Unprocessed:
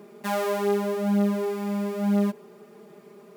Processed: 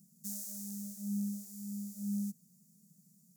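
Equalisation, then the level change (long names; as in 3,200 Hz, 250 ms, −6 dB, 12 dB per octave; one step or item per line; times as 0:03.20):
elliptic band-stop filter 160–6,500 Hz, stop band 40 dB
low-shelf EQ 200 Hz −11 dB
+2.0 dB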